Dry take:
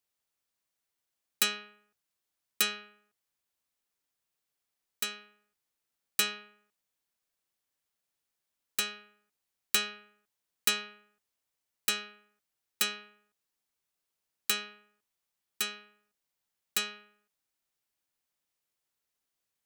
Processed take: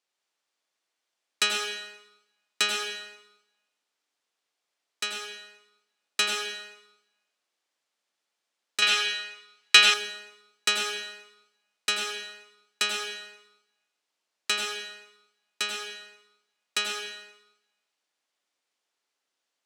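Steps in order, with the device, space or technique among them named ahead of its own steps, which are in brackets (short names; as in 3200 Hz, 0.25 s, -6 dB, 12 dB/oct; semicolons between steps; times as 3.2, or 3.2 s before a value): supermarket ceiling speaker (BPF 330–6400 Hz; reverb RT60 1.0 s, pre-delay 80 ms, DRR 2 dB); 8.82–9.94 bell 2700 Hz +11 dB 2.9 oct; gain +5 dB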